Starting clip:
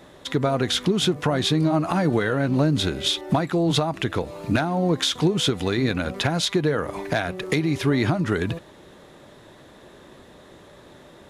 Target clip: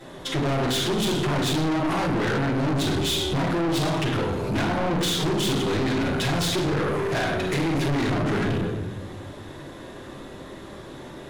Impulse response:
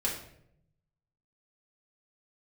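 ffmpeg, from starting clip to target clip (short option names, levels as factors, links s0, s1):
-filter_complex "[1:a]atrim=start_sample=2205,asetrate=27342,aresample=44100[s0];[0:a][s0]afir=irnorm=-1:irlink=0,aeval=exprs='(tanh(10*val(0)+0.2)-tanh(0.2))/10':c=same,volume=0.794"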